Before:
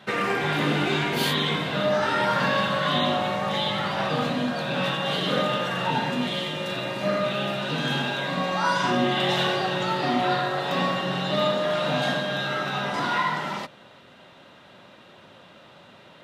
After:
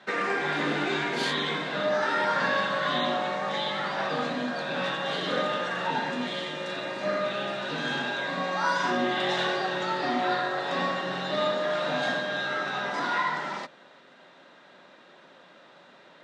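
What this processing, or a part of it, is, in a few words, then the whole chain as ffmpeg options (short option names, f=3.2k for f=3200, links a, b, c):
television speaker: -af "highpass=f=180:w=0.5412,highpass=f=180:w=1.3066,equalizer=f=210:t=q:w=4:g=-5,equalizer=f=1.7k:t=q:w=4:g=4,equalizer=f=2.9k:t=q:w=4:g=-5,lowpass=f=8k:w=0.5412,lowpass=f=8k:w=1.3066,volume=-3dB"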